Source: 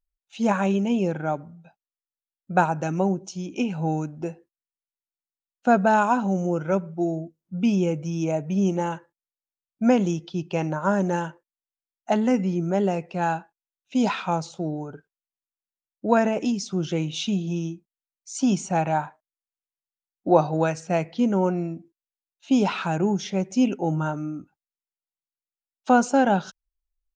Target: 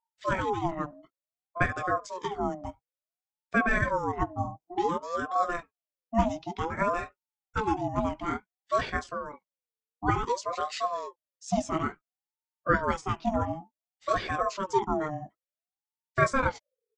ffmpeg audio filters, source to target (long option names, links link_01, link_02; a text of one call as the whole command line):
ffmpeg -i in.wav -af "flanger=delay=15:depth=5.7:speed=1.1,atempo=1.6,aeval=exprs='val(0)*sin(2*PI*680*n/s+680*0.35/0.56*sin(2*PI*0.56*n/s))':channel_layout=same" out.wav